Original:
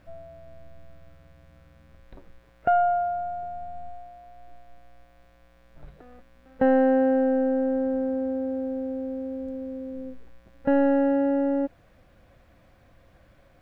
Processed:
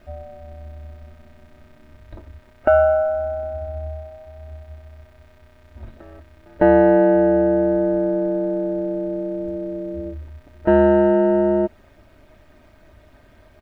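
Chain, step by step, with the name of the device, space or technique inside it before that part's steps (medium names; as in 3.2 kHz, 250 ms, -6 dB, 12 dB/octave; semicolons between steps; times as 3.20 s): ring-modulated robot voice (ring modulator 76 Hz; comb 3.2 ms, depth 64%); trim +8 dB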